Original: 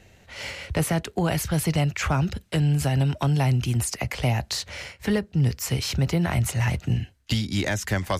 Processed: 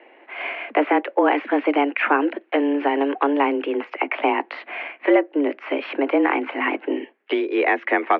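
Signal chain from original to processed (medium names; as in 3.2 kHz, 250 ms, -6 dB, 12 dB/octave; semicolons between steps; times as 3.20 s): mistuned SSB +140 Hz 190–2400 Hz; trim +8.5 dB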